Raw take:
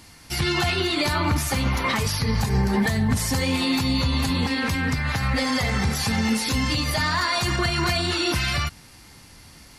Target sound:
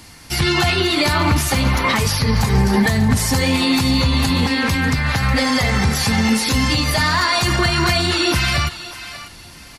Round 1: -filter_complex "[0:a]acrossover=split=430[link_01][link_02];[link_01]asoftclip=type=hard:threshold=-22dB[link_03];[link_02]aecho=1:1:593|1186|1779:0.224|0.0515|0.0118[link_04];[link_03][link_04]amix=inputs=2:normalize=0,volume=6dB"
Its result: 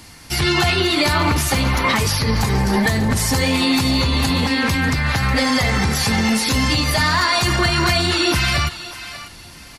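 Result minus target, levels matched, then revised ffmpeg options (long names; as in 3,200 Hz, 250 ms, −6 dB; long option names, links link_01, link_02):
hard clipping: distortion +37 dB
-filter_complex "[0:a]acrossover=split=430[link_01][link_02];[link_01]asoftclip=type=hard:threshold=-14dB[link_03];[link_02]aecho=1:1:593|1186|1779:0.224|0.0515|0.0118[link_04];[link_03][link_04]amix=inputs=2:normalize=0,volume=6dB"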